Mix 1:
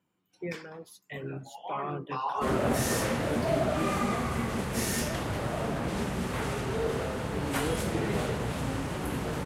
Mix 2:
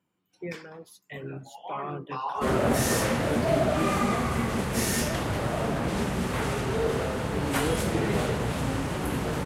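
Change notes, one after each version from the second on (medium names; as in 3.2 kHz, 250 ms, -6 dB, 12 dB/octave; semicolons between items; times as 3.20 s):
background +3.5 dB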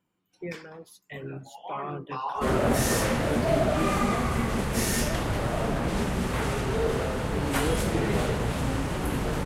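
master: remove high-pass 67 Hz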